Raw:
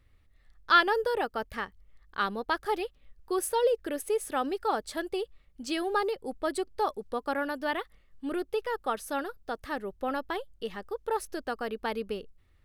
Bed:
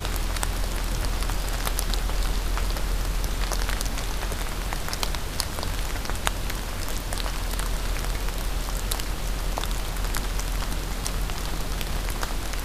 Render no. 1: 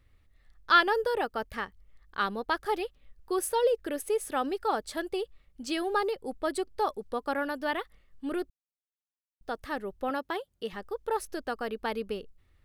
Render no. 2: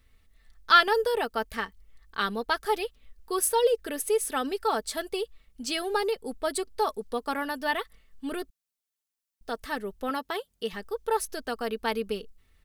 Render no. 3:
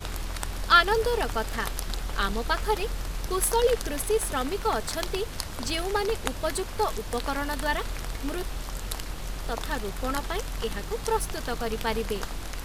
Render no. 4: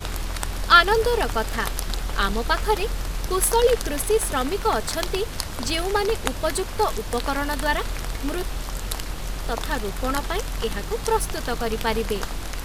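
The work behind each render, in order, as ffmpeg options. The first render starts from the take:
ffmpeg -i in.wav -filter_complex "[0:a]asettb=1/sr,asplit=3[link_01][link_02][link_03];[link_01]atrim=end=10.104[link_04];[link_02]atrim=start=10.1:end=10.73,asetpts=PTS-STARTPTS,afade=type=in:duration=0.004:curve=qsin,afade=type=out:start_time=0.626:duration=0.004:curve=qsin,highpass=98[link_05];[link_03]atrim=start=10.726[link_06];[link_04][link_05]acrossfade=duration=0.004:curve1=hsin:curve2=qsin[link_07];[link_07][link_06]acrossfade=duration=0.004:curve1=qsin:curve2=hsin,asplit=3[link_08][link_09][link_10];[link_08]atrim=end=8.5,asetpts=PTS-STARTPTS,afade=type=out:start_time=8.496:duration=0.004:curve=hsin[link_11];[link_09]atrim=start=8.5:end=9.41,asetpts=PTS-STARTPTS,volume=0[link_12];[link_10]atrim=start=9.41,asetpts=PTS-STARTPTS,afade=type=in:duration=0.004:curve=hsin[link_13];[link_11][link_12][link_13]concat=n=3:v=0:a=1" out.wav
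ffmpeg -i in.wav -af "highshelf=frequency=3000:gain=8,aecho=1:1:4.5:0.48" out.wav
ffmpeg -i in.wav -i bed.wav -filter_complex "[1:a]volume=-6dB[link_01];[0:a][link_01]amix=inputs=2:normalize=0" out.wav
ffmpeg -i in.wav -af "volume=4.5dB" out.wav

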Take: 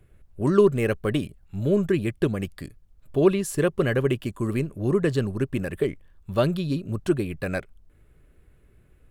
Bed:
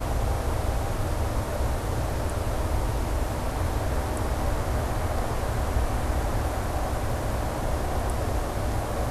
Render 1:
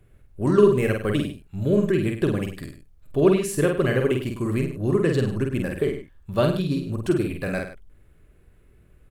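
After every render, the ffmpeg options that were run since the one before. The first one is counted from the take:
ffmpeg -i in.wav -filter_complex "[0:a]asplit=2[link_01][link_02];[link_02]adelay=48,volume=-4dB[link_03];[link_01][link_03]amix=inputs=2:normalize=0,aecho=1:1:101:0.266" out.wav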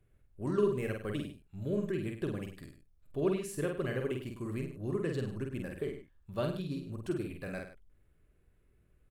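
ffmpeg -i in.wav -af "volume=-13dB" out.wav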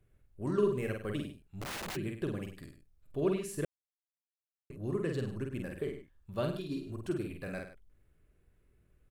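ffmpeg -i in.wav -filter_complex "[0:a]asplit=3[link_01][link_02][link_03];[link_01]afade=type=out:start_time=1.43:duration=0.02[link_04];[link_02]aeval=exprs='(mod(56.2*val(0)+1,2)-1)/56.2':channel_layout=same,afade=type=in:start_time=1.43:duration=0.02,afade=type=out:start_time=1.95:duration=0.02[link_05];[link_03]afade=type=in:start_time=1.95:duration=0.02[link_06];[link_04][link_05][link_06]amix=inputs=3:normalize=0,asettb=1/sr,asplit=3[link_07][link_08][link_09];[link_07]atrim=end=6.564[link_10];[link_08]atrim=start=6.56:end=7.05,asetpts=PTS-STARTPTS,afade=type=in:duration=0.004:curve=qsin,afade=type=out:start_time=0.486:duration=0.004:curve=qsin,aecho=1:1:2.9:0.57,atrim=end_sample=21609[link_11];[link_09]atrim=start=7.046[link_12];[link_10][link_11]acrossfade=duration=0.004:curve1=hsin:curve2=qsin[link_13];[link_13][link_12]acrossfade=duration=0.004:curve1=qsin:curve2=hsin,asplit=3[link_14][link_15][link_16];[link_14]atrim=end=3.65,asetpts=PTS-STARTPTS,afade=type=out:start_time=3.646:duration=0.004:curve=hsin[link_17];[link_15]atrim=start=3.65:end=4.7,asetpts=PTS-STARTPTS,volume=0[link_18];[link_16]atrim=start=4.7,asetpts=PTS-STARTPTS,afade=type=in:duration=0.004:curve=hsin[link_19];[link_17][link_18][link_19]concat=n=3:v=0:a=1" out.wav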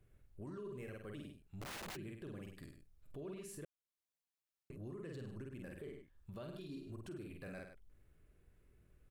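ffmpeg -i in.wav -af "acompressor=threshold=-51dB:ratio=2,alimiter=level_in=16dB:limit=-24dB:level=0:latency=1:release=22,volume=-16dB" out.wav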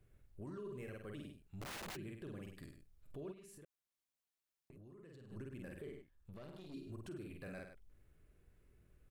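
ffmpeg -i in.wav -filter_complex "[0:a]asplit=3[link_01][link_02][link_03];[link_01]afade=type=out:start_time=3.31:duration=0.02[link_04];[link_02]acompressor=threshold=-55dB:ratio=6:attack=3.2:release=140:knee=1:detection=peak,afade=type=in:start_time=3.31:duration=0.02,afade=type=out:start_time=5.3:duration=0.02[link_05];[link_03]afade=type=in:start_time=5.3:duration=0.02[link_06];[link_04][link_05][link_06]amix=inputs=3:normalize=0,asettb=1/sr,asplit=3[link_07][link_08][link_09];[link_07]atrim=end=6.014[link_10];[link_08]atrim=start=6.01:end=6.74,asetpts=PTS-STARTPTS,afade=type=in:duration=0.004:curve=qsin,afade=type=out:start_time=0.726:duration=0.004:curve=qsin,aeval=exprs='(tanh(251*val(0)+0.65)-tanh(0.65))/251':channel_layout=same[link_11];[link_09]atrim=start=6.736[link_12];[link_10][link_11]acrossfade=duration=0.004:curve1=hsin:curve2=qsin[link_13];[link_13][link_12]acrossfade=duration=0.004:curve1=qsin:curve2=hsin" out.wav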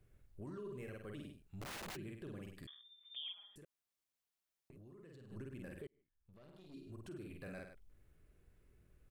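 ffmpeg -i in.wav -filter_complex "[0:a]asettb=1/sr,asplit=3[link_01][link_02][link_03];[link_01]atrim=end=2.674[link_04];[link_02]atrim=start=2.67:end=3.56,asetpts=PTS-STARTPTS,afade=type=in:duration=0.004:curve=qsin,afade=type=out:start_time=0.886:duration=0.004:curve=qsin,lowpass=frequency=3100:width_type=q:width=0.5098,lowpass=frequency=3100:width_type=q:width=0.6013,lowpass=frequency=3100:width_type=q:width=0.9,lowpass=frequency=3100:width_type=q:width=2.563,afreqshift=-3600[link_05];[link_03]atrim=start=3.556[link_06];[link_04][link_05]acrossfade=duration=0.004:curve1=hsin:curve2=qsin[link_07];[link_07][link_06]acrossfade=duration=0.004:curve1=qsin:curve2=hsin,asplit=2[link_08][link_09];[link_08]atrim=end=5.87,asetpts=PTS-STARTPTS,afade=type=out:start_time=5.866:duration=0.004:curve=hsin[link_10];[link_09]atrim=start=5.87,asetpts=PTS-STARTPTS,afade=type=in:duration=1.47[link_11];[link_10][link_11]concat=n=2:v=0:a=1" out.wav

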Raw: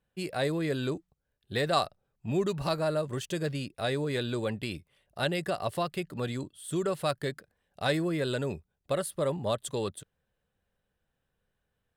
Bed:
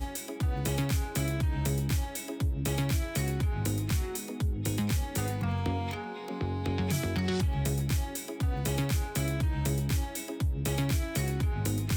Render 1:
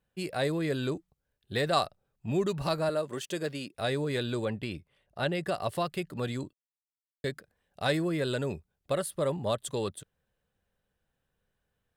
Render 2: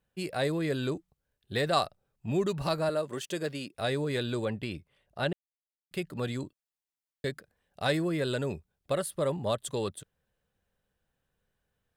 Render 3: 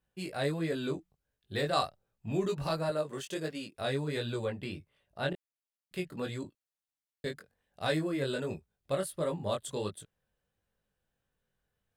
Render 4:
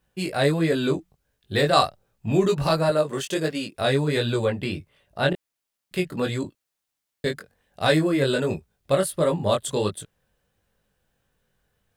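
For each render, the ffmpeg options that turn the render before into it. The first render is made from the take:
ffmpeg -i in.wav -filter_complex "[0:a]asettb=1/sr,asplit=3[link_01][link_02][link_03];[link_01]atrim=end=2.894[link_04];[link_02]atrim=start=2.89:end=3.75,asetpts=PTS-STARTPTS,afade=type=in:duration=0.004:curve=qsin,afade=type=out:start_time=0.856:duration=0.004:curve=qsin,highpass=220[link_05];[link_03]atrim=start=3.746[link_06];[link_04][link_05]acrossfade=duration=0.004:curve1=hsin:curve2=qsin[link_07];[link_07][link_06]acrossfade=duration=0.004:curve1=qsin:curve2=hsin,asettb=1/sr,asplit=3[link_08][link_09][link_10];[link_08]atrim=end=4.454[link_11];[link_09]atrim=start=4.45:end=5.47,asetpts=PTS-STARTPTS,afade=type=in:duration=0.004:curve=qsin,afade=type=out:start_time=1.016:duration=0.004:curve=qsin,highshelf=frequency=4800:gain=-10[link_12];[link_10]atrim=start=5.466[link_13];[link_11][link_12]acrossfade=duration=0.004:curve1=hsin:curve2=qsin[link_14];[link_14][link_13]acrossfade=duration=0.004:curve1=qsin:curve2=hsin,asplit=3[link_15][link_16][link_17];[link_15]atrim=end=6.53,asetpts=PTS-STARTPTS,afade=type=out:start_time=6.526:duration=0.004:curve=hsin[link_18];[link_16]atrim=start=6.53:end=7.24,asetpts=PTS-STARTPTS,volume=0[link_19];[link_17]atrim=start=7.24,asetpts=PTS-STARTPTS,afade=type=in:duration=0.004:curve=hsin[link_20];[link_18][link_19][link_20]concat=n=3:v=0:a=1" out.wav
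ffmpeg -i in.wav -filter_complex "[0:a]asplit=3[link_01][link_02][link_03];[link_01]atrim=end=5.33,asetpts=PTS-STARTPTS,afade=type=out:start_time=5.326:duration=0.004:curve=hsin[link_04];[link_02]atrim=start=5.33:end=5.91,asetpts=PTS-STARTPTS,volume=0[link_05];[link_03]atrim=start=5.91,asetpts=PTS-STARTPTS,afade=type=in:duration=0.004:curve=hsin[link_06];[link_04][link_05][link_06]concat=n=3:v=0:a=1" out.wav
ffmpeg -i in.wav -af "flanger=delay=18:depth=3.9:speed=1.4" out.wav
ffmpeg -i in.wav -af "volume=11dB" out.wav

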